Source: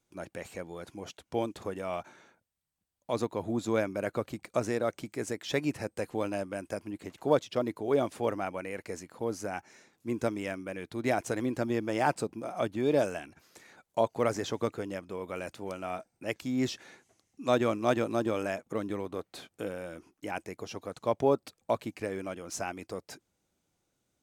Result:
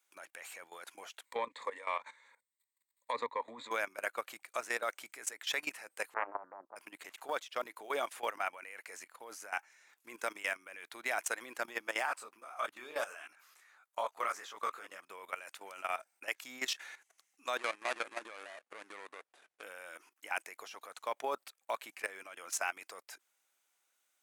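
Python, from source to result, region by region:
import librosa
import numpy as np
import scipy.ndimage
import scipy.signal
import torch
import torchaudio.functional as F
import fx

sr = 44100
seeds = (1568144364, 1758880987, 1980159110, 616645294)

y = fx.chain(x, sr, fx.self_delay(depth_ms=0.057),
    fx.env_lowpass_down(base_hz=2700.0, full_db=-28.0),
    fx.ripple_eq(per_octave=1.0, db=14), at=(1.25, 3.71))
y = fx.chain(y, sr, fx.brickwall_lowpass(high_hz=1300.0),
    fx.doppler_dist(depth_ms=0.86), at=(6.14, 6.76))
y = fx.chain(y, sr, fx.peak_eq(hz=1200.0, db=7.5, octaves=0.44),
    fx.detune_double(cents=55), at=(12.06, 15.0))
y = fx.chain(y, sr, fx.median_filter(points=41),
    fx.low_shelf(hz=250.0, db=-8.0),
    fx.resample_bad(factor=2, down='none', up='filtered'), at=(17.57, 19.63))
y = scipy.signal.sosfilt(scipy.signal.butter(2, 1400.0, 'highpass', fs=sr, output='sos'), y)
y = fx.peak_eq(y, sr, hz=4900.0, db=-7.5, octaves=1.5)
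y = fx.level_steps(y, sr, step_db=15)
y = y * librosa.db_to_amplitude(11.0)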